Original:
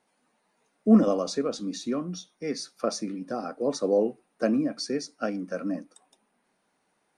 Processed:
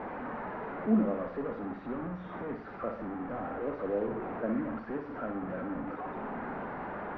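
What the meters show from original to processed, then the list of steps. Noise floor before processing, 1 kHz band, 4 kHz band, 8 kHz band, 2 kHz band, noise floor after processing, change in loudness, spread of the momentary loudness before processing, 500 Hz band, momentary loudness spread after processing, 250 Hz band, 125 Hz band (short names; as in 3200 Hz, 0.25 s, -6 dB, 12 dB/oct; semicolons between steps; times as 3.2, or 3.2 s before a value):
-74 dBFS, +0.5 dB, under -20 dB, under -40 dB, +0.5 dB, -44 dBFS, -7.5 dB, 13 LU, -7.0 dB, 9 LU, -7.0 dB, -4.5 dB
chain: delta modulation 64 kbps, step -22 dBFS; LPF 1600 Hz 24 dB/oct; flutter echo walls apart 10.3 m, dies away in 0.52 s; gain -9 dB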